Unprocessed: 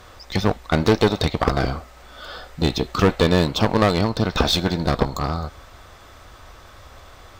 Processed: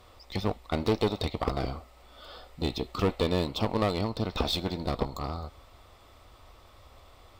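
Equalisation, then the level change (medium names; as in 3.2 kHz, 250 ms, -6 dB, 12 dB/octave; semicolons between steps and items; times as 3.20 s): graphic EQ with 31 bands 160 Hz -6 dB, 1.6 kHz -11 dB, 6.3 kHz -7 dB; -9.0 dB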